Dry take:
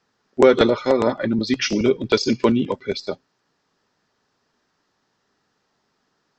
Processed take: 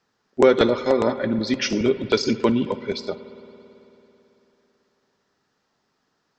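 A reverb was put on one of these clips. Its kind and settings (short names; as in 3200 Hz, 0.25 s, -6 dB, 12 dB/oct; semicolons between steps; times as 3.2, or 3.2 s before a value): spring tank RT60 3.3 s, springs 55 ms, chirp 55 ms, DRR 13.5 dB; gain -2 dB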